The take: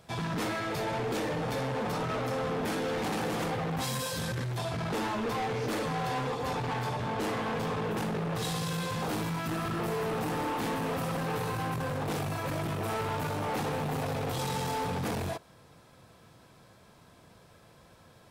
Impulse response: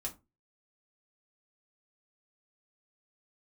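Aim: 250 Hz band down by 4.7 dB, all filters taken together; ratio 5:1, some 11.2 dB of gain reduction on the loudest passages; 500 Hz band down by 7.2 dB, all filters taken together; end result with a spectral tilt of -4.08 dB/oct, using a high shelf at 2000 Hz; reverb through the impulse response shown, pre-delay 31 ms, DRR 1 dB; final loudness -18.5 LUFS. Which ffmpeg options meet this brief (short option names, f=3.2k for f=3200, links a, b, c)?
-filter_complex "[0:a]equalizer=f=250:t=o:g=-5,equalizer=f=500:t=o:g=-8,highshelf=f=2k:g=6.5,acompressor=threshold=-41dB:ratio=5,asplit=2[a][b];[1:a]atrim=start_sample=2205,adelay=31[c];[b][c]afir=irnorm=-1:irlink=0,volume=-0.5dB[d];[a][d]amix=inputs=2:normalize=0,volume=21dB"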